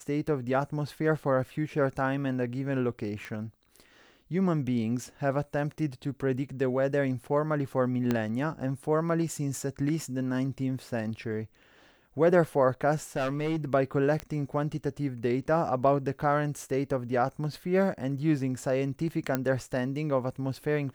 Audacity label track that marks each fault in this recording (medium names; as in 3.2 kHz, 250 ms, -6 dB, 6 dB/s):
3.250000	3.250000	pop -24 dBFS
8.110000	8.110000	pop -14 dBFS
13.160000	13.650000	clipped -25 dBFS
14.200000	14.200000	pop -18 dBFS
19.350000	19.350000	pop -13 dBFS